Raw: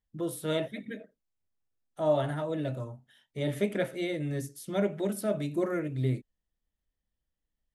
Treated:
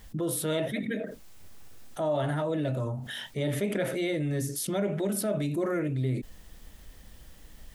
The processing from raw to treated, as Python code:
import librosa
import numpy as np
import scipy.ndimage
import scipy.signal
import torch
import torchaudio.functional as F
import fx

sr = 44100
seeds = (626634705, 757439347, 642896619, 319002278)

y = fx.env_flatten(x, sr, amount_pct=70)
y = y * librosa.db_to_amplitude(-4.5)